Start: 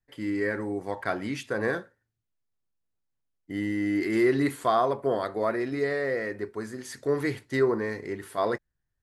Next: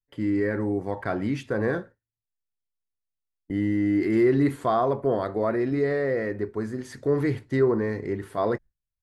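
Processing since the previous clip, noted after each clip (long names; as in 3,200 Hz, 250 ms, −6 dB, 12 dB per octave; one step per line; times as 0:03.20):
noise gate with hold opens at −43 dBFS
spectral tilt −2.5 dB per octave
in parallel at −2 dB: brickwall limiter −20.5 dBFS, peak gain reduction 10.5 dB
on the sum: level −3.5 dB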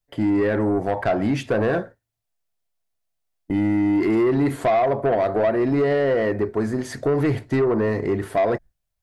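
parametric band 670 Hz +10 dB 0.41 octaves
downward compressor 4 to 1, threshold −22 dBFS, peak gain reduction 8.5 dB
soft clipping −22.5 dBFS, distortion −14 dB
level +8.5 dB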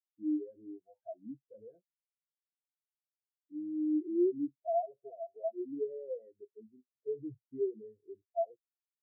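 every bin expanded away from the loudest bin 4 to 1
level −7.5 dB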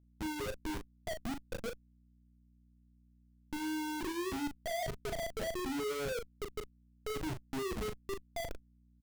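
comparator with hysteresis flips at −47.5 dBFS
mains hum 60 Hz, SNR 25 dB
double-tracking delay 38 ms −7 dB
level +1.5 dB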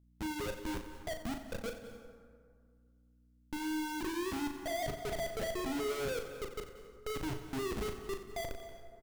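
repeating echo 90 ms, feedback 53%, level −13 dB
on a send at −11 dB: convolution reverb RT60 2.1 s, pre-delay 176 ms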